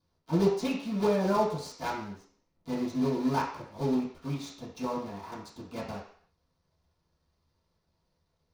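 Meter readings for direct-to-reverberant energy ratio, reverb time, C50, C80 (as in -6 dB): -11.0 dB, 0.55 s, 5.5 dB, 9.0 dB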